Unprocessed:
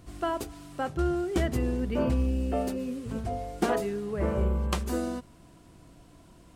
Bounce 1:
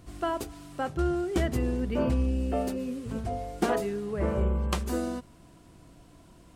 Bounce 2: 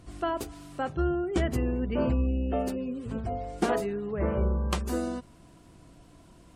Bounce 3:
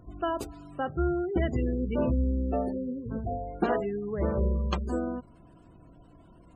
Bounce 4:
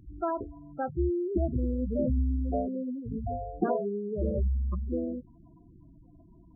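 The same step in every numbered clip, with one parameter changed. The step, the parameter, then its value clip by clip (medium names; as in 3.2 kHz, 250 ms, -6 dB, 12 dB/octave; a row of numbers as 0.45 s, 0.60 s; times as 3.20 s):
spectral gate, under each frame's peak: -60 dB, -40 dB, -25 dB, -10 dB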